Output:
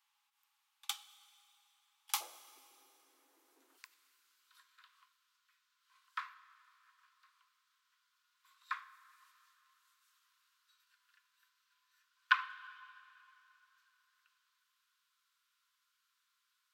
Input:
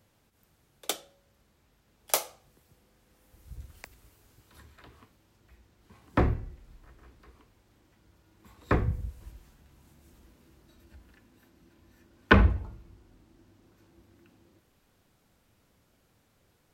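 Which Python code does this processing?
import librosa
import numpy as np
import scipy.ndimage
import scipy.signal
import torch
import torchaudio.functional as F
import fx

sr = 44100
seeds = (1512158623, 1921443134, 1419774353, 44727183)

y = fx.cheby_ripple_highpass(x, sr, hz=fx.steps((0.0, 800.0), (2.2, 260.0), (3.77, 1000.0)), ripple_db=6)
y = fx.rev_plate(y, sr, seeds[0], rt60_s=3.3, hf_ratio=0.9, predelay_ms=0, drr_db=15.0)
y = y * librosa.db_to_amplitude(-4.5)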